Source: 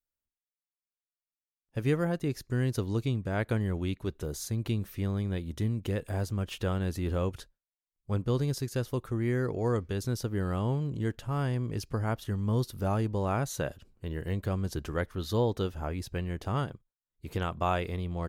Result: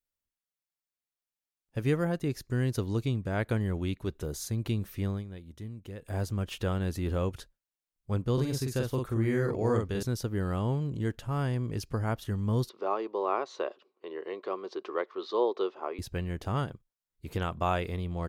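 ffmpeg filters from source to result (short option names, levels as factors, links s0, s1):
-filter_complex "[0:a]asettb=1/sr,asplit=3[s0][s1][s2];[s0]atrim=end=8.334[s3];[s1]atrim=start=8.33:end=10.03,asetpts=PTS-STARTPTS,afade=t=in:d=0.004:c=qsin,afade=t=out:st=1.696:d=0.004:c=qsin,asplit=2[s4][s5];[s5]adelay=45,volume=0.708[s6];[s4][s6]amix=inputs=2:normalize=0,atrim=end_sample=74970[s7];[s2]atrim=start=10.026[s8];[s3][s7]acrossfade=d=0.004:c1=hsin:c2=qsin[s9];[s9][s8]acrossfade=d=0.004:c1=qsin:c2=hsin,asettb=1/sr,asplit=3[s10][s11][s12];[s10]atrim=end=12.694[s13];[s11]atrim=start=12.69:end=15.99,asetpts=PTS-STARTPTS,afade=t=in:d=0.004:c=qsin,afade=t=out:st=3.296:d=0.004:c=qsin,highpass=f=370:w=0.5412,highpass=f=370:w=1.3066,equalizer=f=380:t=q:w=4:g=8,equalizer=f=1100:t=q:w=4:g=9,equalizer=f=1600:t=q:w=4:g=-7,equalizer=f=3100:t=q:w=4:g=-3,lowpass=f=4300:w=0.5412,lowpass=f=4300:w=1.3066[s14];[s12]atrim=start=15.986[s15];[s13][s14]acrossfade=d=0.004:c1=hsin:c2=qsin[s16];[s16][s15]acrossfade=d=0.004:c1=qsin:c2=hsin,asplit=3[s17][s18][s19];[s17]atrim=end=5.25,asetpts=PTS-STARTPTS,afade=t=out:st=5.04:d=0.21:c=qsin:silence=0.281838[s20];[s18]atrim=start=5.25:end=6.01,asetpts=PTS-STARTPTS,volume=0.282[s21];[s19]atrim=start=6.01,asetpts=PTS-STARTPTS,afade=t=in:d=0.21:c=qsin:silence=0.281838[s22];[s20][s21][s22]concat=n=3:v=0:a=1"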